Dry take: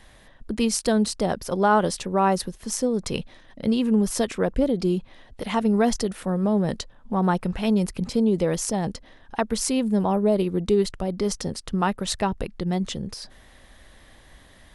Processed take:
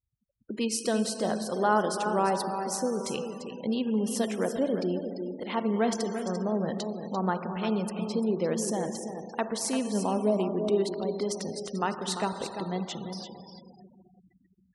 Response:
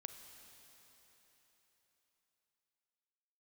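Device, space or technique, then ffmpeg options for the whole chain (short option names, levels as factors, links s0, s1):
cave: -filter_complex "[0:a]aecho=1:1:344:0.355[s0];[1:a]atrim=start_sample=2205[s1];[s0][s1]afir=irnorm=-1:irlink=0,afftfilt=real='re*gte(hypot(re,im),0.00794)':imag='im*gte(hypot(re,im),0.00794)':win_size=1024:overlap=0.75,highpass=210"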